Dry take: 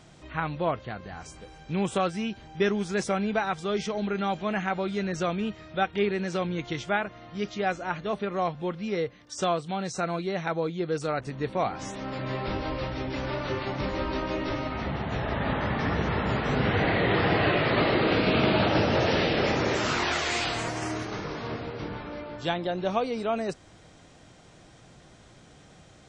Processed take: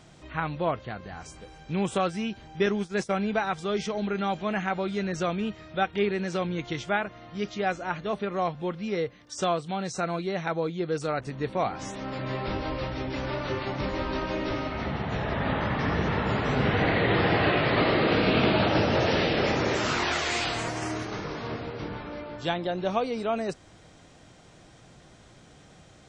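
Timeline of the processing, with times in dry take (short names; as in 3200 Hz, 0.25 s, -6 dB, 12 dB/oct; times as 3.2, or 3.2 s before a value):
2.66–3.14 expander -28 dBFS
13.85–18.51 feedback echo 87 ms, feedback 44%, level -9.5 dB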